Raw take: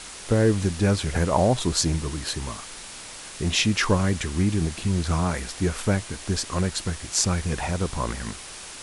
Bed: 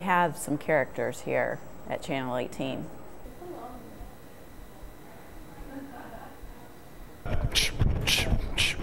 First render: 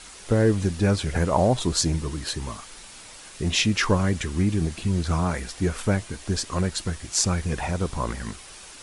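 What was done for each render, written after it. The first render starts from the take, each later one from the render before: noise reduction 6 dB, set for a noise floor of -40 dBFS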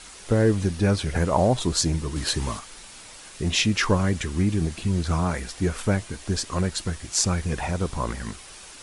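0.62–1.15 s: band-stop 7.3 kHz; 2.16–2.59 s: gain +4.5 dB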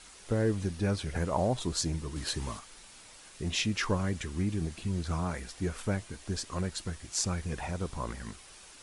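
trim -8.5 dB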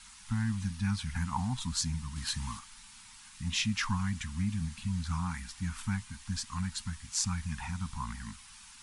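elliptic band-stop 240–880 Hz, stop band 40 dB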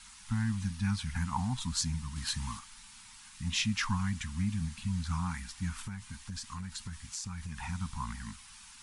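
5.83–7.63 s: compression, threshold -36 dBFS

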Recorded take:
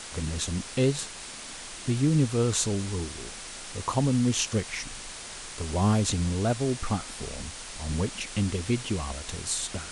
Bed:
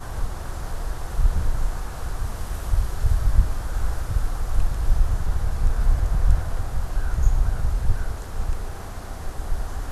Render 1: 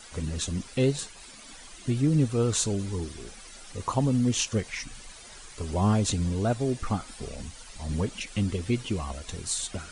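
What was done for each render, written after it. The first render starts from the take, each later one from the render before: noise reduction 12 dB, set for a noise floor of -41 dBFS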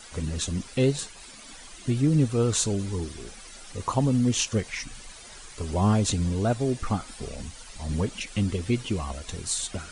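trim +1.5 dB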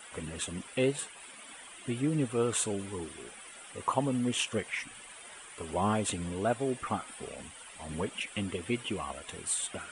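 high-pass 510 Hz 6 dB/octave; high-order bell 5.2 kHz -13 dB 1 oct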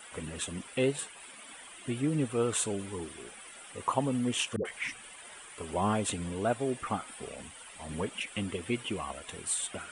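4.56–5.23 s: phase dispersion highs, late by 90 ms, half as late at 500 Hz

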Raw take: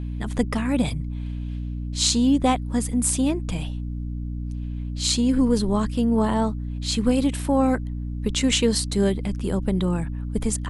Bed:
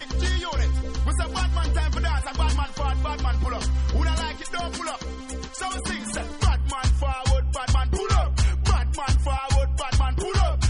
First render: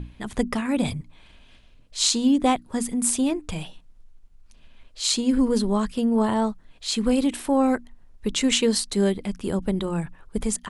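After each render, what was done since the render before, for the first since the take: hum notches 60/120/180/240/300 Hz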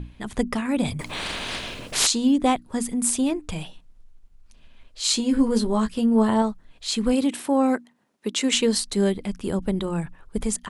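0.99–2.07 s: spectrum-flattening compressor 4:1; 5.03–6.42 s: doubling 18 ms -6.5 dB; 7.12–8.52 s: high-pass 88 Hz -> 250 Hz 24 dB/octave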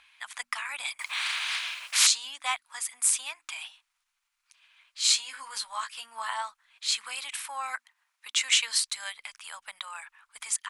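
inverse Chebyshev high-pass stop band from 410 Hz, stop band 50 dB; peaking EQ 2.3 kHz +4.5 dB 0.3 oct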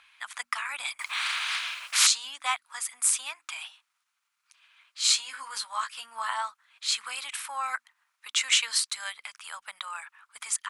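high-pass 57 Hz 24 dB/octave; peaking EQ 1.3 kHz +5 dB 0.53 oct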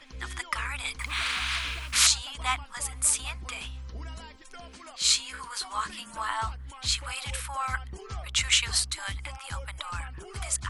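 add bed -17 dB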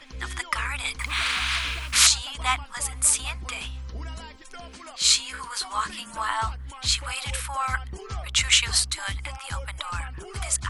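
trim +4 dB; peak limiter -3 dBFS, peak gain reduction 2.5 dB

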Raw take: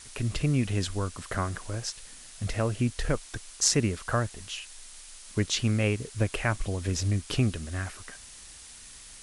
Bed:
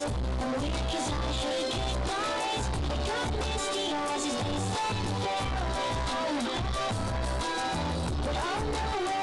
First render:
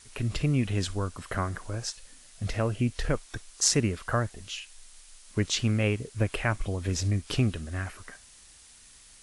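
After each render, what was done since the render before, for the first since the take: noise print and reduce 6 dB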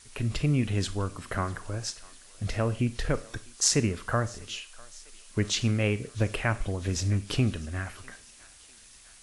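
thinning echo 650 ms, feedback 68%, high-pass 550 Hz, level -22.5 dB; Schroeder reverb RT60 0.45 s, combs from 27 ms, DRR 15 dB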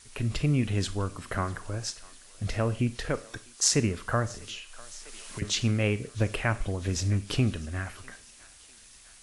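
2.95–3.74 s: bass shelf 140 Hz -8.5 dB; 4.30–5.42 s: three bands compressed up and down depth 100%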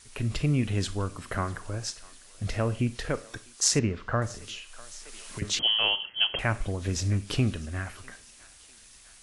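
3.79–4.22 s: distance through air 170 m; 5.59–6.39 s: frequency inversion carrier 3.2 kHz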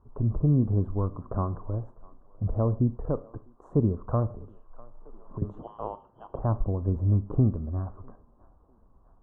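elliptic low-pass 1.1 kHz, stop band 50 dB; bass shelf 250 Hz +5.5 dB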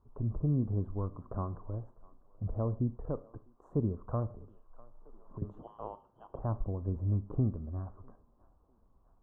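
trim -7.5 dB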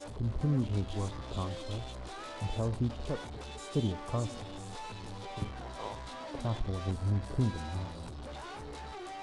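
add bed -13.5 dB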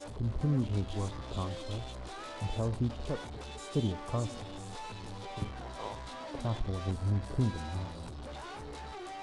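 no audible change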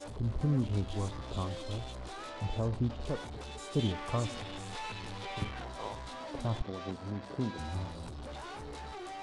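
2.30–3.01 s: distance through air 59 m; 3.79–5.65 s: peaking EQ 2.3 kHz +7.5 dB 1.8 oct; 6.62–7.59 s: band-pass 190–5600 Hz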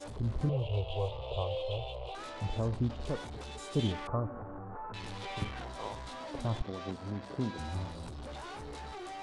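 0.49–2.15 s: FFT filter 130 Hz 0 dB, 250 Hz -27 dB, 480 Hz +10 dB, 940 Hz +2 dB, 1.7 kHz -22 dB, 2.8 kHz +10 dB, 5.9 kHz -17 dB; 4.07–4.94 s: elliptic low-pass 1.4 kHz, stop band 80 dB

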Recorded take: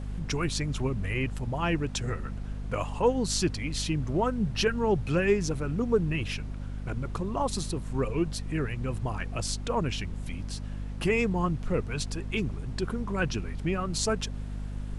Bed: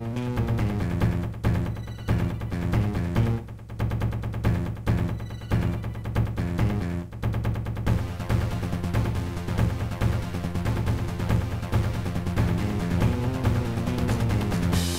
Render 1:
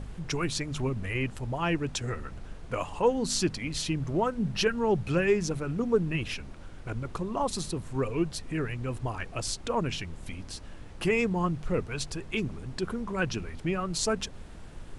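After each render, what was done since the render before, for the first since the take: de-hum 50 Hz, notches 5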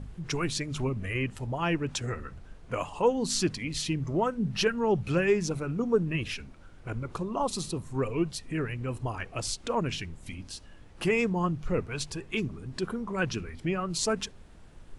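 noise print and reduce 7 dB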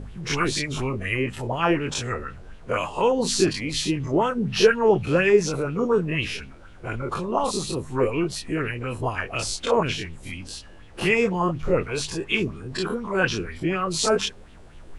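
every event in the spectrogram widened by 60 ms; sweeping bell 4.1 Hz 370–3300 Hz +10 dB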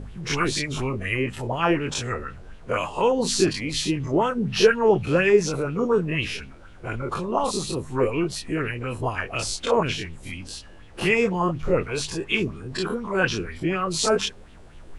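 no audible change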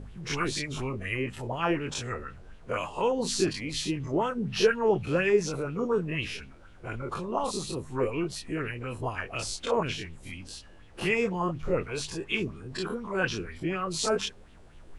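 trim -6 dB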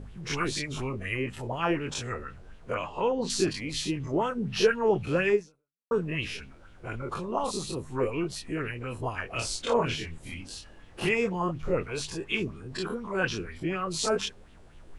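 2.74–3.30 s: distance through air 120 m; 5.34–5.91 s: fade out exponential; 9.28–11.09 s: doubling 25 ms -3.5 dB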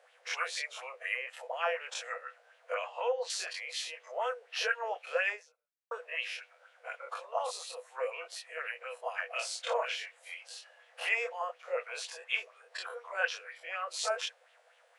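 rippled Chebyshev high-pass 480 Hz, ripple 6 dB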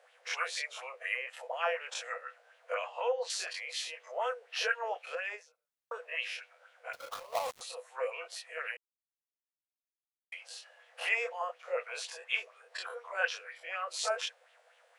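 5.04–6.00 s: compression, threshold -33 dBFS; 6.93–7.61 s: dead-time distortion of 0.17 ms; 8.77–10.32 s: mute

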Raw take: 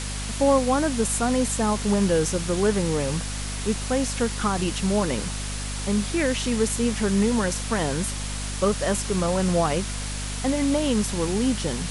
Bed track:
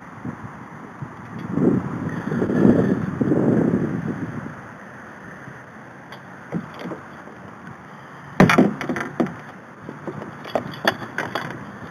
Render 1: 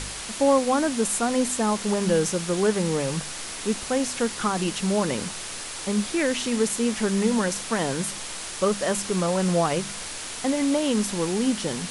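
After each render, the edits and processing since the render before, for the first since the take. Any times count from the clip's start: de-hum 50 Hz, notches 5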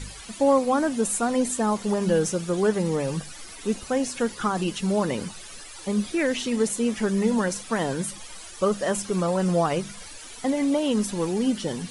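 noise reduction 14 dB, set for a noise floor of -35 dBFS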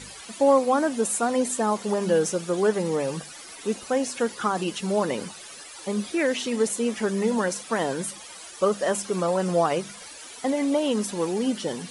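high-pass 270 Hz 6 dB/octave; peaking EQ 540 Hz +2.5 dB 2.1 oct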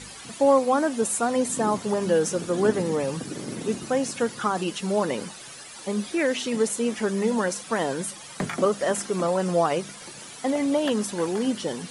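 add bed track -16.5 dB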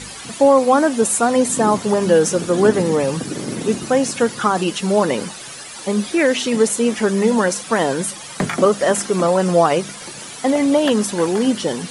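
trim +8 dB; peak limiter -3 dBFS, peak gain reduction 3 dB

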